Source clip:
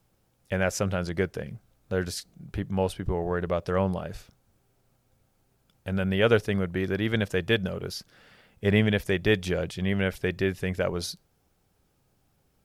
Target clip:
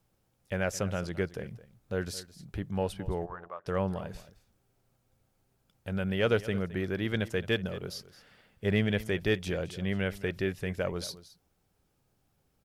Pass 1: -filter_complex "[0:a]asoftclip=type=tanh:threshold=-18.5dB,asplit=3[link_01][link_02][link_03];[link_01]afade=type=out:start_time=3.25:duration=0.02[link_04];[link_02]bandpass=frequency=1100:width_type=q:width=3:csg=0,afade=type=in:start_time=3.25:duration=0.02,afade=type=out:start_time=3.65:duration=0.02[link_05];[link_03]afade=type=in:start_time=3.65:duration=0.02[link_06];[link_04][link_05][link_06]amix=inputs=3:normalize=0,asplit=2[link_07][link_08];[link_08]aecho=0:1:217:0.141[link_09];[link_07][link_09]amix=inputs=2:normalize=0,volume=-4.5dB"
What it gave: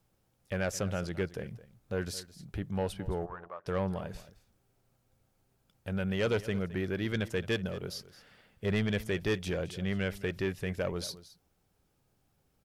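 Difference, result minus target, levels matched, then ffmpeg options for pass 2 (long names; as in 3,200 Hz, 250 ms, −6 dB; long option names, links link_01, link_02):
soft clipping: distortion +14 dB
-filter_complex "[0:a]asoftclip=type=tanh:threshold=-8.5dB,asplit=3[link_01][link_02][link_03];[link_01]afade=type=out:start_time=3.25:duration=0.02[link_04];[link_02]bandpass=frequency=1100:width_type=q:width=3:csg=0,afade=type=in:start_time=3.25:duration=0.02,afade=type=out:start_time=3.65:duration=0.02[link_05];[link_03]afade=type=in:start_time=3.65:duration=0.02[link_06];[link_04][link_05][link_06]amix=inputs=3:normalize=0,asplit=2[link_07][link_08];[link_08]aecho=0:1:217:0.141[link_09];[link_07][link_09]amix=inputs=2:normalize=0,volume=-4.5dB"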